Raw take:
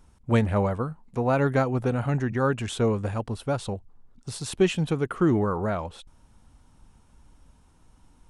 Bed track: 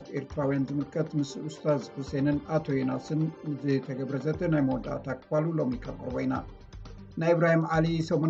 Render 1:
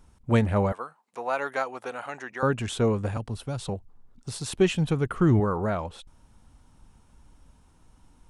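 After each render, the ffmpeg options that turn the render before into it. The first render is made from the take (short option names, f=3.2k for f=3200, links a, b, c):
-filter_complex "[0:a]asettb=1/sr,asplit=3[a][b][c];[a]atrim=end=0.724[d];[b]atrim=start=0.72:end=2.43,asetpts=PTS-STARTPTS,afade=t=in:d=0.004:c=qsin,afade=t=out:st=1.706:d=0.004:c=qsin,highpass=710[e];[c]atrim=start=2.426[f];[d][e]acrossfade=d=0.004:c1=hsin:c2=qsin[g];[g][f]acrossfade=d=0.004:c1=qsin:c2=hsin,asettb=1/sr,asplit=3[h][i][j];[h]atrim=end=3.174[k];[i]atrim=start=3.17:end=3.69,asetpts=PTS-STARTPTS,afade=t=in:d=0.004:c=qsin,afade=t=out:st=0.516:d=0.004:c=qsin,acrossover=split=190|3000[l][m][n];[m]acompressor=threshold=-40dB:ratio=2:attack=3.2:release=140:knee=2.83:detection=peak[o];[l][o][n]amix=inputs=3:normalize=0[p];[j]atrim=start=3.686[q];[k][p]acrossfade=d=0.004:c1=hsin:c2=qsin[r];[r][q]acrossfade=d=0.004:c1=qsin:c2=hsin,asettb=1/sr,asplit=3[s][t][u];[s]atrim=end=4.544[v];[t]atrim=start=4.54:end=5.4,asetpts=PTS-STARTPTS,afade=t=in:d=0.004:c=qsin,afade=t=out:st=0.856:d=0.004:c=qsin,asubboost=boost=9:cutoff=170[w];[u]atrim=start=5.396[x];[v][w]acrossfade=d=0.004:c1=hsin:c2=qsin[y];[y][x]acrossfade=d=0.004:c1=qsin:c2=hsin"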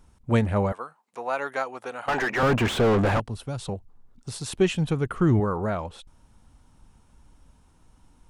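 -filter_complex "[0:a]asettb=1/sr,asplit=3[a][b][c];[a]atrim=end=2.084[d];[b]atrim=start=2.08:end=3.2,asetpts=PTS-STARTPTS,afade=t=in:d=0.004:c=qsin,afade=t=out:st=1.116:d=0.004:c=qsin,asplit=2[e][f];[f]highpass=f=720:p=1,volume=36dB,asoftclip=type=tanh:threshold=-13dB[g];[e][g]amix=inputs=2:normalize=0,lowpass=f=1.1k:p=1,volume=-6dB[h];[c]atrim=start=3.196[i];[d][h]acrossfade=d=0.004:c1=hsin:c2=qsin[j];[j][i]acrossfade=d=0.004:c1=qsin:c2=hsin"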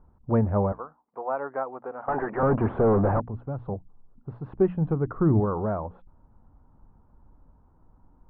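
-af "lowpass=f=1.2k:w=0.5412,lowpass=f=1.2k:w=1.3066,bandreject=f=60:t=h:w=6,bandreject=f=120:t=h:w=6,bandreject=f=180:t=h:w=6,bandreject=f=240:t=h:w=6,bandreject=f=300:t=h:w=6"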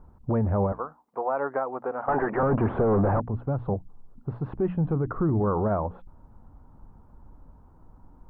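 -filter_complex "[0:a]asplit=2[a][b];[b]acompressor=threshold=-29dB:ratio=6,volume=-0.5dB[c];[a][c]amix=inputs=2:normalize=0,alimiter=limit=-17dB:level=0:latency=1:release=21"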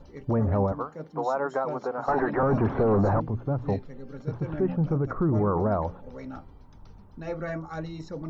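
-filter_complex "[1:a]volume=-10dB[a];[0:a][a]amix=inputs=2:normalize=0"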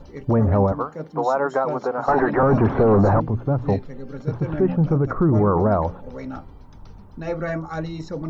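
-af "volume=6.5dB"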